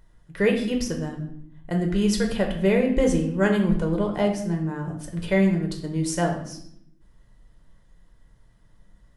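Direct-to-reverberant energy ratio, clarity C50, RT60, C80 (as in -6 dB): 2.0 dB, 7.5 dB, 0.70 s, 10.0 dB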